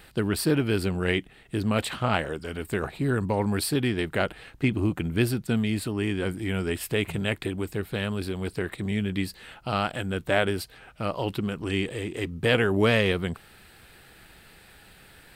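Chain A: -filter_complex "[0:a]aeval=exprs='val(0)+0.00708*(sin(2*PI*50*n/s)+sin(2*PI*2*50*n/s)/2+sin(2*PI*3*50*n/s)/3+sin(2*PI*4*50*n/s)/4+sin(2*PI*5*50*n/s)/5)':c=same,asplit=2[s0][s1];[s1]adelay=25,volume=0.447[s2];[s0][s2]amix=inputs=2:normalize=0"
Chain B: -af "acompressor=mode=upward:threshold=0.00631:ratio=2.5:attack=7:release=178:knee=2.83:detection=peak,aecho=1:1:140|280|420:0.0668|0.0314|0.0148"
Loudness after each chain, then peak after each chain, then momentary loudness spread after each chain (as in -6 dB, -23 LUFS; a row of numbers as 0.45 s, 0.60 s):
-26.5 LUFS, -27.5 LUFS; -6.0 dBFS, -7.0 dBFS; 22 LU, 8 LU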